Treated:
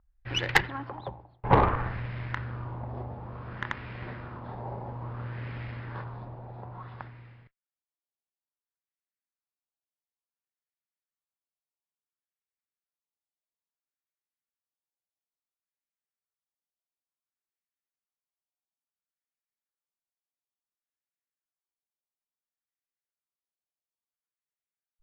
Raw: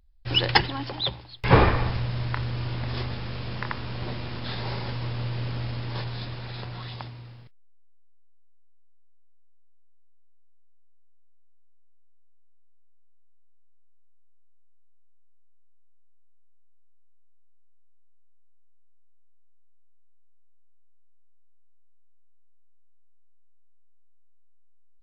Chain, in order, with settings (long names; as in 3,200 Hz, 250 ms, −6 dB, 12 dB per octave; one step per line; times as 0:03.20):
auto-filter low-pass sine 0.58 Hz 770–2,100 Hz
harmonic generator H 2 −8 dB, 4 −20 dB, 8 −22 dB, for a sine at 2.5 dBFS
level −6.5 dB